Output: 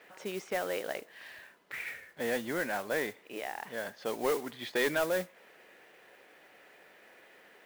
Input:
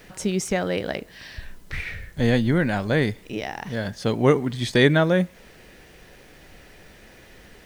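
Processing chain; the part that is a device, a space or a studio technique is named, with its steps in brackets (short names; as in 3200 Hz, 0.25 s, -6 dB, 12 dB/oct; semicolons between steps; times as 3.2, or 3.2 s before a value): carbon microphone (BPF 470–2700 Hz; soft clip -17 dBFS, distortion -13 dB; modulation noise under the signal 14 dB); gain -5 dB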